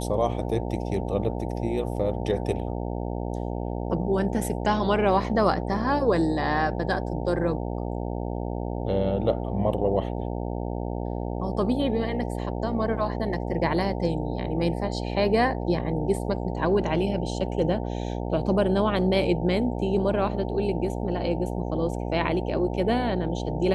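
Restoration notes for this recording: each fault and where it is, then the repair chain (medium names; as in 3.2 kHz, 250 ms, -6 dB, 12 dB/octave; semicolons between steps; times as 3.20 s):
buzz 60 Hz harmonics 15 -30 dBFS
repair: de-hum 60 Hz, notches 15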